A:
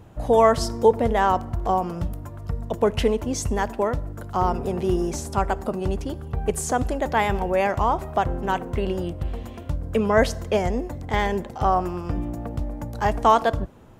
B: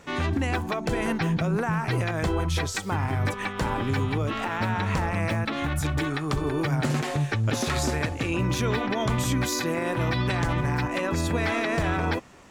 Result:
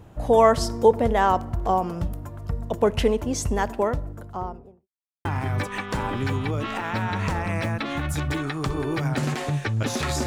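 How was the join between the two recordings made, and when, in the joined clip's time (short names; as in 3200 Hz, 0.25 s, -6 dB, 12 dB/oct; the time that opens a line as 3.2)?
A
3.8–4.88 studio fade out
4.88–5.25 mute
5.25 switch to B from 2.92 s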